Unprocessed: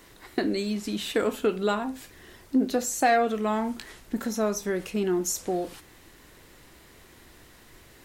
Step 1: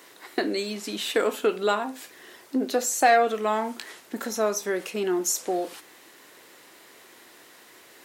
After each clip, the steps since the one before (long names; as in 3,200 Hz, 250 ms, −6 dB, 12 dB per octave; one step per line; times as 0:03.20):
high-pass filter 360 Hz 12 dB per octave
level +3.5 dB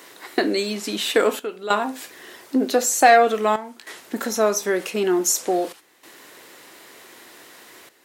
gate pattern "xxxxxxxxx..xxx" 97 BPM −12 dB
level +5.5 dB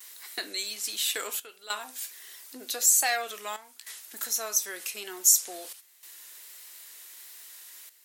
pitch vibrato 1.4 Hz 53 cents
first difference
level +1.5 dB